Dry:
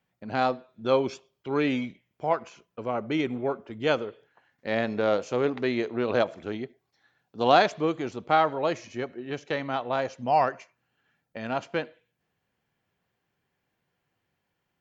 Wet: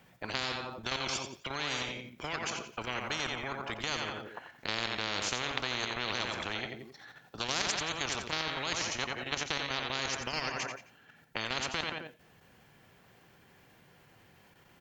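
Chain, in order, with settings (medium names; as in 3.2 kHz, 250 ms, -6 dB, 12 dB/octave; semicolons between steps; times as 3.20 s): level held to a coarse grid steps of 10 dB; on a send: feedback delay 88 ms, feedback 31%, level -10 dB; on the sum: spectrum-flattening compressor 10:1; trim -2 dB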